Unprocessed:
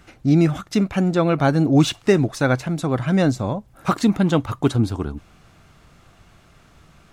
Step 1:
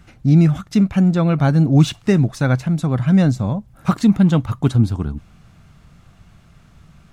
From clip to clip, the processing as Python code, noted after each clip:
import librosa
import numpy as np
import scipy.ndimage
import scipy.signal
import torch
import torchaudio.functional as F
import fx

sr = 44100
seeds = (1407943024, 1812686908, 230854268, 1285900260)

y = fx.low_shelf_res(x, sr, hz=250.0, db=6.5, q=1.5)
y = y * librosa.db_to_amplitude(-2.0)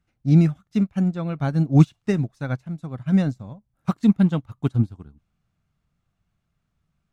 y = fx.upward_expand(x, sr, threshold_db=-25.0, expansion=2.5)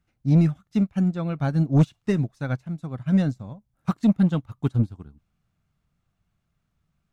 y = 10.0 ** (-10.5 / 20.0) * np.tanh(x / 10.0 ** (-10.5 / 20.0))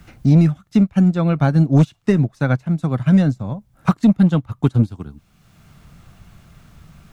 y = fx.band_squash(x, sr, depth_pct=70)
y = y * librosa.db_to_amplitude(7.0)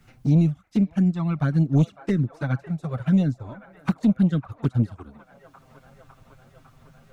y = fx.echo_wet_bandpass(x, sr, ms=554, feedback_pct=76, hz=1100.0, wet_db=-14.0)
y = fx.env_flanger(y, sr, rest_ms=8.5, full_db=-9.0)
y = y * librosa.db_to_amplitude(-5.5)